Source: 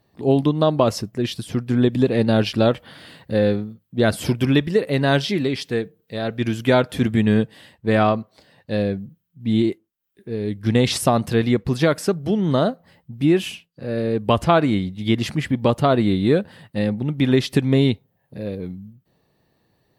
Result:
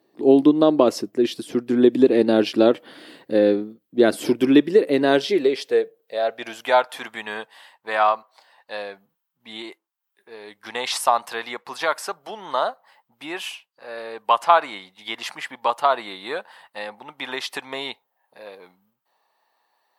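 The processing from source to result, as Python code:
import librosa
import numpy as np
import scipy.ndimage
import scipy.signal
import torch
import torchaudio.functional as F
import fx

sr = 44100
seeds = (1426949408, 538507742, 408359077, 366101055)

y = fx.filter_sweep_highpass(x, sr, from_hz=320.0, to_hz=910.0, start_s=4.93, end_s=7.0, q=2.9)
y = y * librosa.db_to_amplitude(-2.0)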